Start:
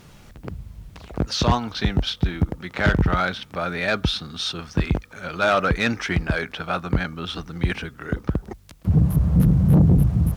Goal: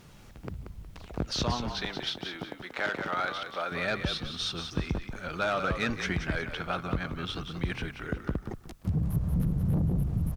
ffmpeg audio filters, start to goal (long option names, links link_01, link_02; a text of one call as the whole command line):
ffmpeg -i in.wav -filter_complex "[0:a]asettb=1/sr,asplit=3[link_01][link_02][link_03];[link_01]atrim=end=1.774[link_04];[link_02]atrim=start=1.77:end=3.72,asetpts=PTS-STARTPTS,afade=type=in:duration=0.004:curve=qsin,afade=type=out:start_time=1.946:duration=0.004:curve=qsin,highpass=400[link_05];[link_03]atrim=start=3.716[link_06];[link_04][link_05]acrossfade=duration=0.004:curve1=hsin:curve2=qsin[link_07];[link_07][link_06]acrossfade=duration=0.004:curve1=qsin:curve2=hsin,acompressor=threshold=-22dB:ratio=2.5,asplit=5[link_08][link_09][link_10][link_11][link_12];[link_09]adelay=182,afreqshift=-46,volume=-7.5dB[link_13];[link_10]adelay=364,afreqshift=-92,volume=-17.7dB[link_14];[link_11]adelay=546,afreqshift=-138,volume=-27.8dB[link_15];[link_12]adelay=728,afreqshift=-184,volume=-38dB[link_16];[link_08][link_13][link_14][link_15][link_16]amix=inputs=5:normalize=0,volume=-5.5dB" out.wav